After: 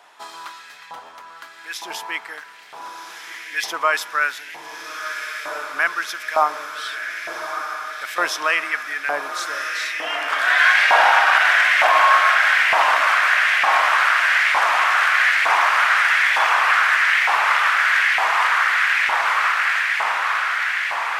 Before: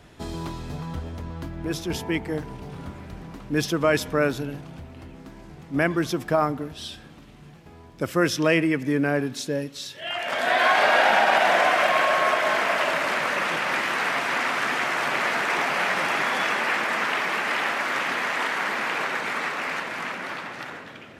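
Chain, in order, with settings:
feedback delay with all-pass diffusion 1,375 ms, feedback 74%, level −6 dB
auto-filter high-pass saw up 1.1 Hz 850–2,000 Hz
level +2 dB

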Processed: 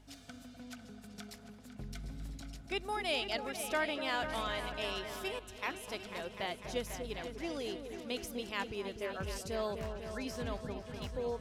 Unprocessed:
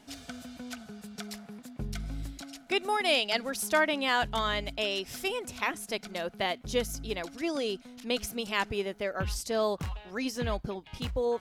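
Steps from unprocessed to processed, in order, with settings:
mains hum 50 Hz, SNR 20 dB
echo whose low-pass opens from repeat to repeat 249 ms, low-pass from 750 Hz, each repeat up 2 octaves, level −6 dB
0:05.39–0:05.88: multiband upward and downward expander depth 100%
level −8.5 dB

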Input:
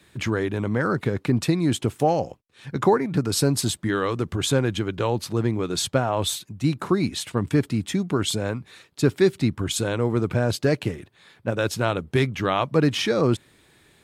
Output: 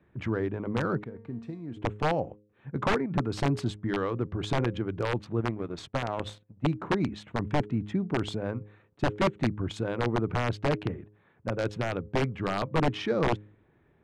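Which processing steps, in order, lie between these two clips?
adaptive Wiener filter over 9 samples
high-shelf EQ 5,000 Hz +4 dB
hum removal 104.3 Hz, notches 5
0:01.04–0:01.77: tuned comb filter 230 Hz, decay 0.62 s, harmonics all, mix 80%
wrap-around overflow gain 12 dB
0:05.40–0:06.64: power curve on the samples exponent 1.4
head-to-tape spacing loss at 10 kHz 26 dB
one half of a high-frequency compander decoder only
level −3.5 dB

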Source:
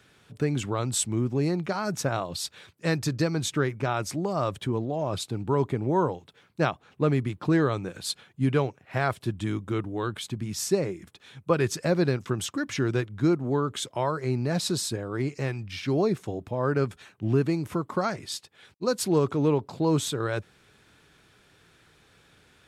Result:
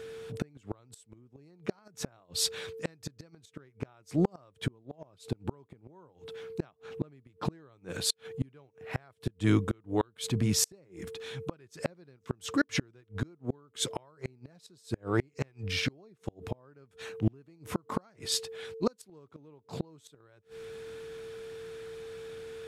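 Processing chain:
steady tone 450 Hz −47 dBFS
gate with flip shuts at −19 dBFS, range −38 dB
transient designer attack −5 dB, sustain 0 dB
level +6.5 dB

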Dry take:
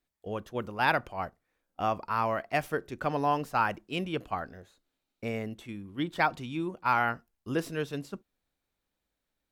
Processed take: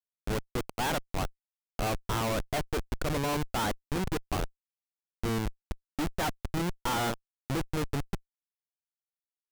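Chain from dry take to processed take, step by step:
comparator with hysteresis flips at −31 dBFS
level +4 dB

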